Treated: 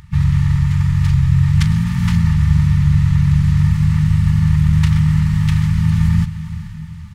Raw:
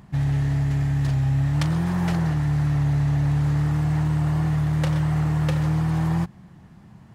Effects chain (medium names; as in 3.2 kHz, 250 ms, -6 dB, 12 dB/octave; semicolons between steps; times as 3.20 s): FFT band-reject 180–1700 Hz; harmony voices -12 st -3 dB, -7 st -2 dB, +4 st -11 dB; echo that smears into a reverb 458 ms, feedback 53%, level -13 dB; trim +5 dB